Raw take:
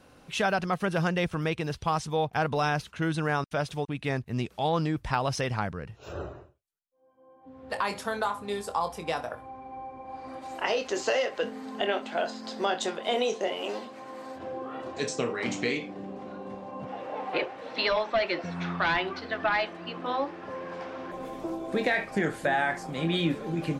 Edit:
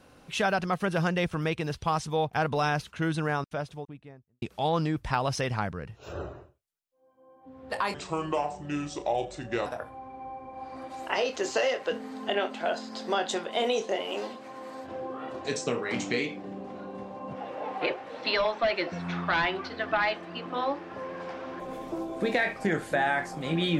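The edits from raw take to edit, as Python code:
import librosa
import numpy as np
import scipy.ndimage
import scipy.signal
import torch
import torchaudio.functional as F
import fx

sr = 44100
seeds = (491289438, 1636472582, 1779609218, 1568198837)

y = fx.studio_fade_out(x, sr, start_s=3.06, length_s=1.36)
y = fx.edit(y, sr, fx.speed_span(start_s=7.94, length_s=1.24, speed=0.72), tone=tone)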